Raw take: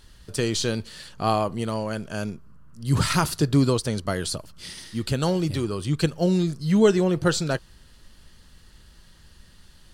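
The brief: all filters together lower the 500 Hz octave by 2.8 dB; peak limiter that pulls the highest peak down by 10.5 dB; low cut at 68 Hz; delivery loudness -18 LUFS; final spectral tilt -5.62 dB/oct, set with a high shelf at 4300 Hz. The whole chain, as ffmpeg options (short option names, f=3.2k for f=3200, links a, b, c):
-af "highpass=68,equalizer=f=500:t=o:g=-3.5,highshelf=f=4.3k:g=-7,volume=12dB,alimiter=limit=-7.5dB:level=0:latency=1"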